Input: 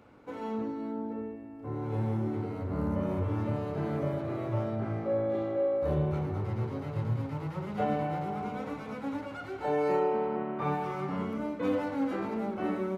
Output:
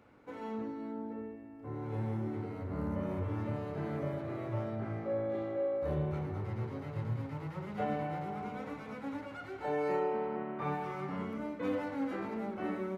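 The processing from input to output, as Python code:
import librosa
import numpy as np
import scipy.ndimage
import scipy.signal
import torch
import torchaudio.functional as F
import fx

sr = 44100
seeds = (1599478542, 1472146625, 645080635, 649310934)

y = fx.peak_eq(x, sr, hz=1900.0, db=4.0, octaves=0.59)
y = y * 10.0 ** (-5.0 / 20.0)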